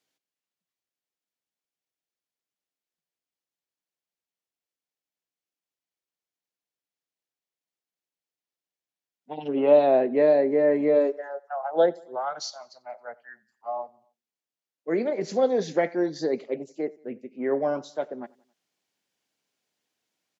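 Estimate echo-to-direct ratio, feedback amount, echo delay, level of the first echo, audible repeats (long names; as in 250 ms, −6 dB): −23.0 dB, 51%, 90 ms, −24.0 dB, 2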